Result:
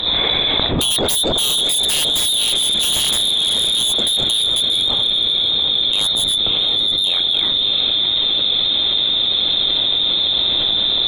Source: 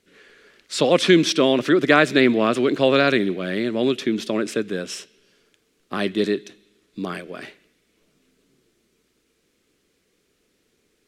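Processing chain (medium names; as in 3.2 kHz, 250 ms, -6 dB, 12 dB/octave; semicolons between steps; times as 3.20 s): high-order bell 1.6 kHz -15 dB; frequency inversion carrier 3.9 kHz; on a send: echo that smears into a reverb 662 ms, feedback 52%, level -9.5 dB; on the sum: sine folder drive 15 dB, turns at -3.5 dBFS; level flattener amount 100%; trim -11 dB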